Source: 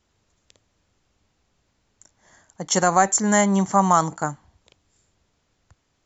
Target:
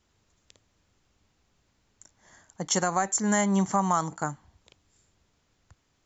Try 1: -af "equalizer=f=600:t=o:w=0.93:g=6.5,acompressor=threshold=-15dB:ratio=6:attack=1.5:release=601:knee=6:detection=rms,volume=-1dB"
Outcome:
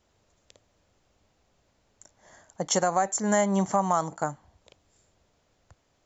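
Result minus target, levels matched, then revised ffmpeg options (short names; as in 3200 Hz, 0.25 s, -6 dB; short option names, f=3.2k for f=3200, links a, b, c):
500 Hz band +4.5 dB
-af "equalizer=f=600:t=o:w=0.93:g=-2,acompressor=threshold=-15dB:ratio=6:attack=1.5:release=601:knee=6:detection=rms,volume=-1dB"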